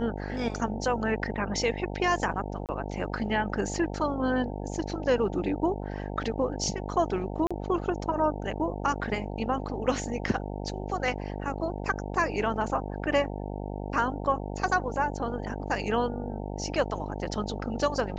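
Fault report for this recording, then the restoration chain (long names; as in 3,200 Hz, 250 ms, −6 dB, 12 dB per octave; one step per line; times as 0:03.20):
mains buzz 50 Hz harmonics 18 −35 dBFS
0:02.66–0:02.69: drop-out 28 ms
0:07.47–0:07.51: drop-out 36 ms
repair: hum removal 50 Hz, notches 18
repair the gap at 0:02.66, 28 ms
repair the gap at 0:07.47, 36 ms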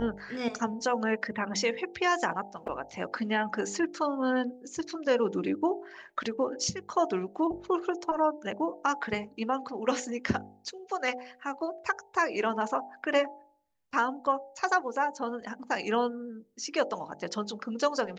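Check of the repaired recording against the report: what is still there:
none of them is left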